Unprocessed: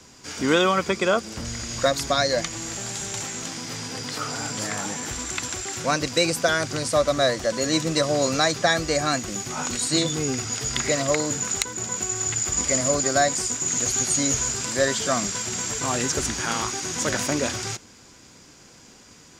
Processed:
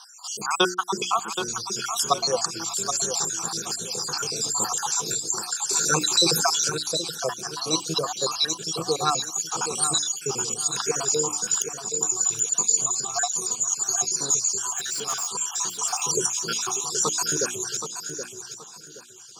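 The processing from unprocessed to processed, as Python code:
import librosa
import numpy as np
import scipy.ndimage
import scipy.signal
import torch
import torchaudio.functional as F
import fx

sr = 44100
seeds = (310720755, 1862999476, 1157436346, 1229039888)

y = fx.spec_dropout(x, sr, seeds[0], share_pct=69)
y = scipy.signal.sosfilt(scipy.signal.butter(2, 96.0, 'highpass', fs=sr, output='sos'), y)
y = fx.low_shelf(y, sr, hz=330.0, db=-10.0)
y = fx.hum_notches(y, sr, base_hz=60, count=6)
y = fx.rider(y, sr, range_db=4, speed_s=2.0)
y = fx.fixed_phaser(y, sr, hz=400.0, stages=8)
y = fx.clip_hard(y, sr, threshold_db=-34.5, at=(14.71, 15.31), fade=0.02)
y = fx.echo_feedback(y, sr, ms=774, feedback_pct=27, wet_db=-8.5)
y = fx.env_flatten(y, sr, amount_pct=50, at=(5.69, 6.7))
y = y * 10.0 ** (7.0 / 20.0)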